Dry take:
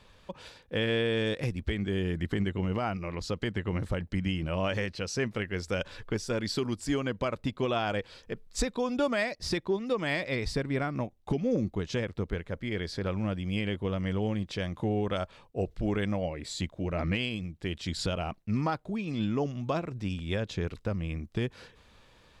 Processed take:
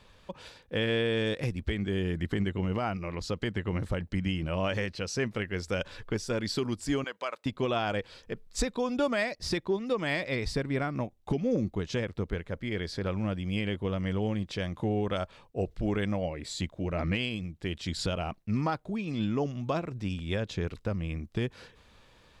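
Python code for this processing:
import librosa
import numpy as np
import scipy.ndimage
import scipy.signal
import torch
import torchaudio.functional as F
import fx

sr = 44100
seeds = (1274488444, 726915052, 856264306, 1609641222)

y = fx.highpass(x, sr, hz=720.0, slope=12, at=(7.04, 7.46))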